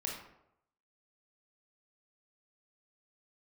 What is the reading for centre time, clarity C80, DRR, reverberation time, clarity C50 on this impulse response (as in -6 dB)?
41 ms, 7.0 dB, -2.0 dB, 0.80 s, 3.5 dB